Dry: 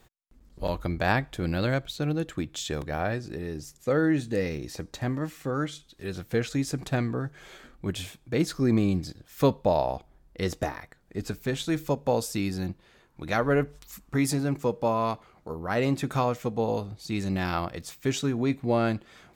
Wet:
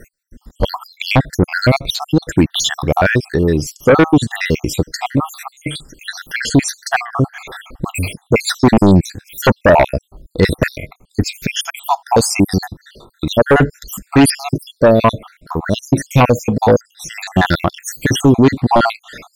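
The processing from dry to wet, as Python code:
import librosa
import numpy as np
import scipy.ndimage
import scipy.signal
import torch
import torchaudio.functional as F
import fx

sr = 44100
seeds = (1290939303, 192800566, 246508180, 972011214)

y = fx.spec_dropout(x, sr, seeds[0], share_pct=69)
y = fx.fold_sine(y, sr, drive_db=10, ceiling_db=-11.0)
y = y * 10.0 ** (7.5 / 20.0)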